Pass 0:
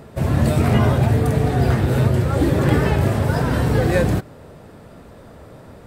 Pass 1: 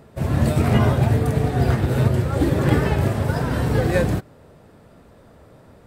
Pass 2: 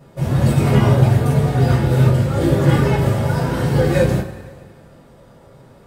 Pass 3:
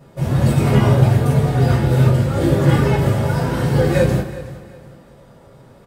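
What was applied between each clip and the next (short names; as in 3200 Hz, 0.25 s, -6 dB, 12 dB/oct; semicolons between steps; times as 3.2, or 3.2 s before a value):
upward expander 1.5:1, over -26 dBFS
two-slope reverb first 0.24 s, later 1.8 s, from -19 dB, DRR -7.5 dB; gain -5.5 dB
feedback echo 0.369 s, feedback 31%, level -17.5 dB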